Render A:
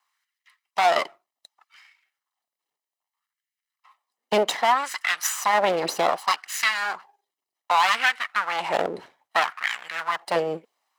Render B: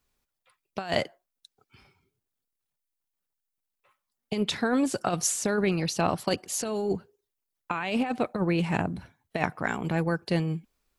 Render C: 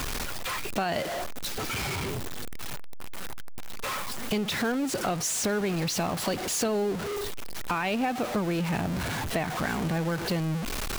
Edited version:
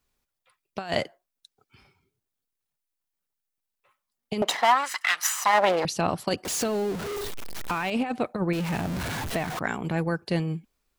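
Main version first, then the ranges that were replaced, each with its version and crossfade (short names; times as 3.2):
B
4.42–5.85 from A
6.45–7.9 from C
8.53–9.59 from C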